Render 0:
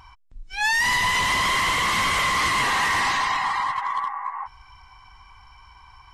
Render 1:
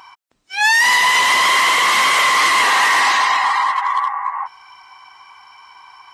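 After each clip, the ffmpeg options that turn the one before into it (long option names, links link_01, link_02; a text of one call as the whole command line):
ffmpeg -i in.wav -af "highpass=420,volume=8dB" out.wav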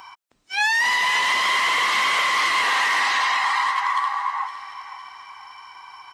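ffmpeg -i in.wav -filter_complex "[0:a]acrossover=split=1300|5600[link_01][link_02][link_03];[link_01]acompressor=threshold=-27dB:ratio=4[link_04];[link_02]acompressor=threshold=-21dB:ratio=4[link_05];[link_03]acompressor=threshold=-43dB:ratio=4[link_06];[link_04][link_05][link_06]amix=inputs=3:normalize=0,aecho=1:1:513|1026|1539|2052:0.211|0.0867|0.0355|0.0146" out.wav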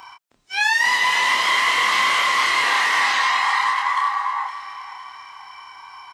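ffmpeg -i in.wav -filter_complex "[0:a]asplit=2[link_01][link_02];[link_02]adelay=28,volume=-3dB[link_03];[link_01][link_03]amix=inputs=2:normalize=0" out.wav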